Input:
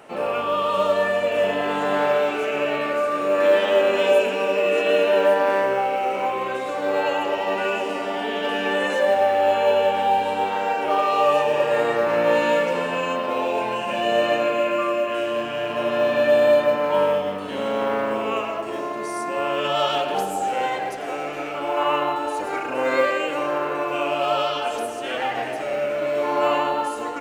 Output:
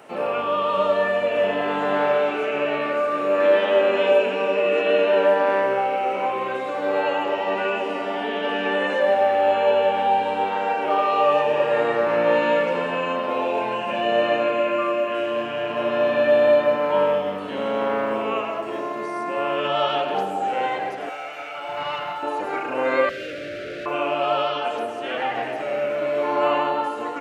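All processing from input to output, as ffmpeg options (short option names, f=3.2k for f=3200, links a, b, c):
-filter_complex "[0:a]asettb=1/sr,asplit=3[a][b][c];[a]atrim=end=21.094[d];[b]atrim=start=21.09:end=22.23,asetpts=PTS-STARTPTS,afade=t=in:d=0.004:c=qsin,afade=t=out:st=1.136:d=0.004:c=qsin,highpass=f=1.3k:p=1,aeval=exprs='clip(val(0),-1,0.0376)':c=same,aecho=1:1:1.4:0.4,atrim=end_sample=50274[e];[c]atrim=start=22.226[f];[d][e]acrossfade=d=0.004:c1=hsin:c2=qsin[g];[g][f]acrossfade=d=0.004:c1=qsin:c2=hsin,asettb=1/sr,asplit=3[h][i][j];[h]atrim=end=23.094[k];[i]atrim=start=23.09:end=23.86,asetpts=PTS-STARTPTS,afade=t=in:d=0.004:c=qsin,afade=t=out:st=0.766:d=0.004:c=qsin,aeval=exprs='(tanh(56.2*val(0)+0.75)-tanh(0.75))/56.2':c=same,asuperstop=centerf=940:order=8:qfactor=1.3,acontrast=46[l];[j]atrim=start=23.856[m];[k][l]acrossfade=d=0.004:c1=hsin:c2=qsin[n];[n][m]acrossfade=d=0.004:c1=qsin:c2=hsin,acrossover=split=4000[o][p];[p]acompressor=threshold=-57dB:ratio=4:attack=1:release=60[q];[o][q]amix=inputs=2:normalize=0,highpass=100"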